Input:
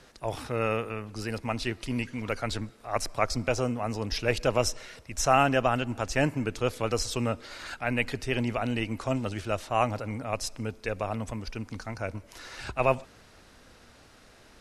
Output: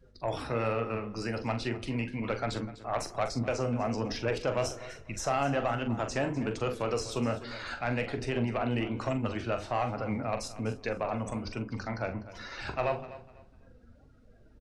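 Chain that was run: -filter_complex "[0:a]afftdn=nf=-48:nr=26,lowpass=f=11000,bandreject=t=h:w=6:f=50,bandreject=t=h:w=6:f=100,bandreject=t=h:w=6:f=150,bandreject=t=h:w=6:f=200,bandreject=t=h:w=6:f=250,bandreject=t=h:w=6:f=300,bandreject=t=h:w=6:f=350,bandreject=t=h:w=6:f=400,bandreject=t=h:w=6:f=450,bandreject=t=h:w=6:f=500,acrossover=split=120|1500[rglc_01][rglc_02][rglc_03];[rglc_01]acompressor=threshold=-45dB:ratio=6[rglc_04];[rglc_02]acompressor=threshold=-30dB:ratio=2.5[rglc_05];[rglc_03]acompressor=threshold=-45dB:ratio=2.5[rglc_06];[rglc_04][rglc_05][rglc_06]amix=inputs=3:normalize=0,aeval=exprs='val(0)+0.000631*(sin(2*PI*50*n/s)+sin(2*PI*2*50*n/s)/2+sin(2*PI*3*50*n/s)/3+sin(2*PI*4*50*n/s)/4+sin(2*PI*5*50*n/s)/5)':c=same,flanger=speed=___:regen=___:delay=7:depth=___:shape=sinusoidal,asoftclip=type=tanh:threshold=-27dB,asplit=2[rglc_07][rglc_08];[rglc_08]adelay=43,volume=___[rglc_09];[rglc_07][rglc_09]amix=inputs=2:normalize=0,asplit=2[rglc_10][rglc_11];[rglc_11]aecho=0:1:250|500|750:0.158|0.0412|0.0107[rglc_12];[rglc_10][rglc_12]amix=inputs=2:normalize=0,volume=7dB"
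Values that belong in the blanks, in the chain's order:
1.2, 68, 9.3, -9.5dB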